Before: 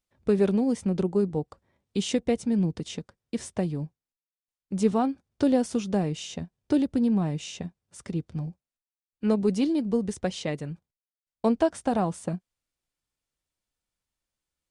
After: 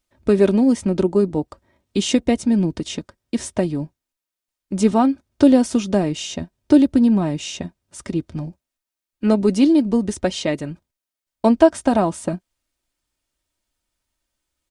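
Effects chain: comb 3.2 ms, depth 44%; trim +8 dB

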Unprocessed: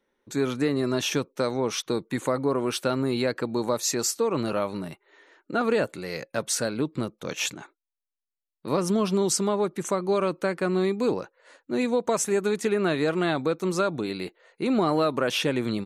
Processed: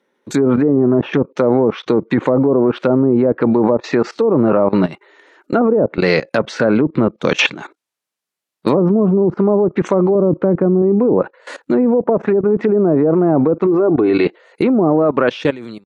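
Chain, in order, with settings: fade out at the end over 1.31 s; low-pass that closes with the level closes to 1 kHz, closed at -19.5 dBFS; 10.15–10.82 s: tilt EQ -2.5 dB/octave; 13.66–14.25 s: comb 2.7 ms, depth 62%; low-pass that closes with the level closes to 670 Hz, closed at -21 dBFS; high-pass 140 Hz 12 dB/octave; treble shelf 3.8 kHz -3.5 dB; level held to a coarse grid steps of 18 dB; loudness maximiser +24.5 dB; 0.77–1.33 s: loudspeaker Doppler distortion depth 0.11 ms; trim -1 dB

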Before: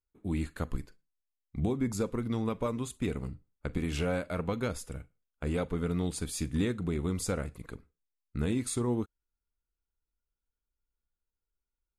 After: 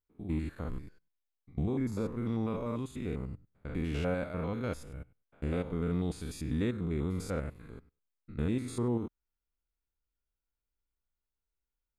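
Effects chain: spectrogram pixelated in time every 100 ms; peaking EQ 8.3 kHz -9 dB 1.7 oct

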